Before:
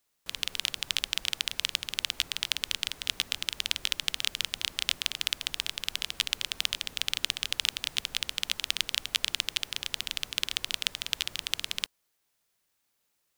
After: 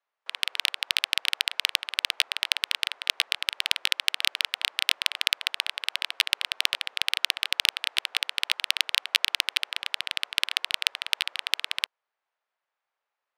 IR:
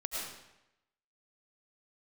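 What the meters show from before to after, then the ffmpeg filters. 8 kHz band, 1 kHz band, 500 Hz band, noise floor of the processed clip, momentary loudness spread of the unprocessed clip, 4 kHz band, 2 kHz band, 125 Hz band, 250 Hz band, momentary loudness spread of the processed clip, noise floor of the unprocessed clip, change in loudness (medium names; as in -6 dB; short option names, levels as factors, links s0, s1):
-1.0 dB, +6.5 dB, +1.0 dB, under -85 dBFS, 4 LU, +4.0 dB, +7.5 dB, under -15 dB, under -10 dB, 5 LU, -77 dBFS, +4.5 dB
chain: -filter_complex "[0:a]acrossover=split=610|2900[s0][s1][s2];[s0]acrusher=bits=4:mix=0:aa=0.000001[s3];[s3][s1][s2]amix=inputs=3:normalize=0,afreqshift=-17,adynamicsmooth=sensitivity=1:basefreq=1500,volume=2"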